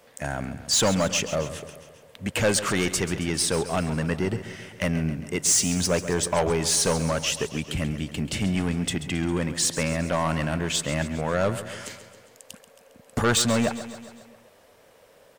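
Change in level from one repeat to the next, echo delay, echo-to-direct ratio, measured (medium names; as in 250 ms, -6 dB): -4.5 dB, 135 ms, -11.0 dB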